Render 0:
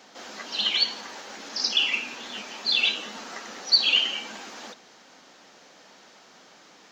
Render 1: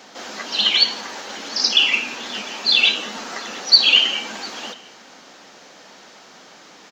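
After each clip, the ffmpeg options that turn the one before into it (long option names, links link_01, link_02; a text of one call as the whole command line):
ffmpeg -i in.wav -af "aecho=1:1:702:0.0668,volume=7.5dB" out.wav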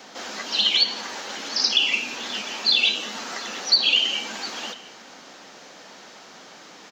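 ffmpeg -i in.wav -filter_complex "[0:a]acrossover=split=990|2600|5900[link_01][link_02][link_03][link_04];[link_01]acompressor=threshold=-37dB:ratio=4[link_05];[link_02]acompressor=threshold=-35dB:ratio=4[link_06];[link_03]acompressor=threshold=-17dB:ratio=4[link_07];[link_04]acompressor=threshold=-36dB:ratio=4[link_08];[link_05][link_06][link_07][link_08]amix=inputs=4:normalize=0" out.wav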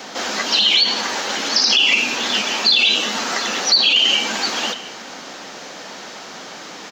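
ffmpeg -i in.wav -af "alimiter=level_in=15.5dB:limit=-1dB:release=50:level=0:latency=1,volume=-5dB" out.wav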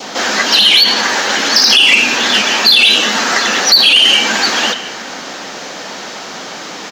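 ffmpeg -i in.wav -af "adynamicequalizer=threshold=0.0158:dfrequency=1700:dqfactor=3.1:tfrequency=1700:tqfactor=3.1:attack=5:release=100:ratio=0.375:range=2.5:mode=boostabove:tftype=bell,acontrast=63,volume=1.5dB" out.wav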